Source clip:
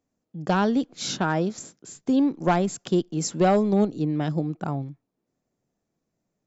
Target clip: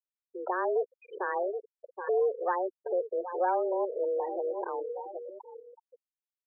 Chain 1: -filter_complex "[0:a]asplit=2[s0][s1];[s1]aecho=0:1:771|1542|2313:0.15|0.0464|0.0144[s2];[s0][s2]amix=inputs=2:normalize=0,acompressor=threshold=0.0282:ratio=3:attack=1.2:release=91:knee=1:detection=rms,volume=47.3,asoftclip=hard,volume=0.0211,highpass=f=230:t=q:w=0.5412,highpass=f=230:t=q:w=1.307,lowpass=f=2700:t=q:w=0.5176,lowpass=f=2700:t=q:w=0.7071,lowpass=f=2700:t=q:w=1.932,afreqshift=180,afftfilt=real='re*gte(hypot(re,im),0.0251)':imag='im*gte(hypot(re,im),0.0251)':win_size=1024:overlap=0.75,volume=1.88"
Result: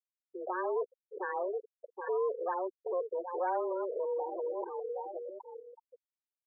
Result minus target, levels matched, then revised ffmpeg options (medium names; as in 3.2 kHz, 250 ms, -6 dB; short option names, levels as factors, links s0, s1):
overload inside the chain: distortion +19 dB
-filter_complex "[0:a]asplit=2[s0][s1];[s1]aecho=0:1:771|1542|2313:0.15|0.0464|0.0144[s2];[s0][s2]amix=inputs=2:normalize=0,acompressor=threshold=0.0282:ratio=3:attack=1.2:release=91:knee=1:detection=rms,volume=18.8,asoftclip=hard,volume=0.0531,highpass=f=230:t=q:w=0.5412,highpass=f=230:t=q:w=1.307,lowpass=f=2700:t=q:w=0.5176,lowpass=f=2700:t=q:w=0.7071,lowpass=f=2700:t=q:w=1.932,afreqshift=180,afftfilt=real='re*gte(hypot(re,im),0.0251)':imag='im*gte(hypot(re,im),0.0251)':win_size=1024:overlap=0.75,volume=1.88"